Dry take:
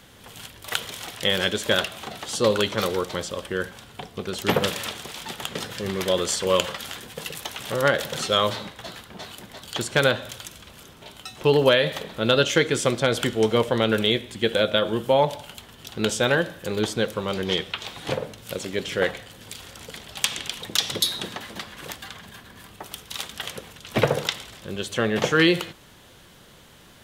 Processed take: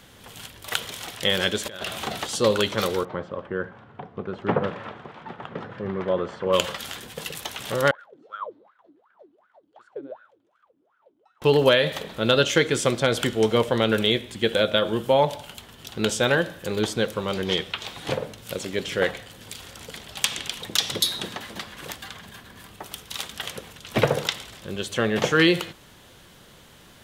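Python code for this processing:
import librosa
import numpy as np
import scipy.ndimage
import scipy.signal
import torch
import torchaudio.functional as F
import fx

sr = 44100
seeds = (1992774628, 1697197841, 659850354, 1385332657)

y = fx.over_compress(x, sr, threshold_db=-32.0, ratio=-1.0, at=(1.65, 2.27))
y = fx.cheby1_bandpass(y, sr, low_hz=110.0, high_hz=1300.0, order=2, at=(3.03, 6.52), fade=0.02)
y = fx.wah_lfo(y, sr, hz=2.7, low_hz=280.0, high_hz=1500.0, q=22.0, at=(7.91, 11.42))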